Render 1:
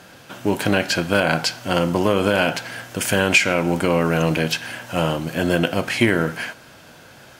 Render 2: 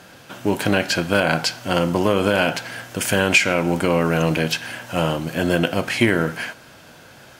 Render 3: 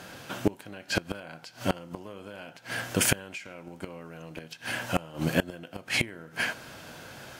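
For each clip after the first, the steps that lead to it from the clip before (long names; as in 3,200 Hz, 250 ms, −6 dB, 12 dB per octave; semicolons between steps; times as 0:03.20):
no processing that can be heard
gate with flip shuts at −9 dBFS, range −25 dB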